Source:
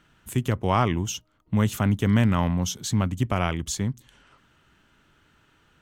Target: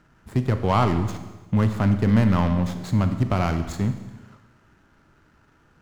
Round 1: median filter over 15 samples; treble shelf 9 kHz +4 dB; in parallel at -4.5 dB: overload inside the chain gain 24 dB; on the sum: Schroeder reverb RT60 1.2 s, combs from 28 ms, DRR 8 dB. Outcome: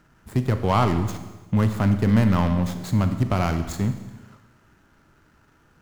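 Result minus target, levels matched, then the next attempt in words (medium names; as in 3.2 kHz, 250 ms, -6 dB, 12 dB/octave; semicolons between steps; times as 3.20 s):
8 kHz band +3.0 dB
median filter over 15 samples; treble shelf 9 kHz -5.5 dB; in parallel at -4.5 dB: overload inside the chain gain 24 dB; on the sum: Schroeder reverb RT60 1.2 s, combs from 28 ms, DRR 8 dB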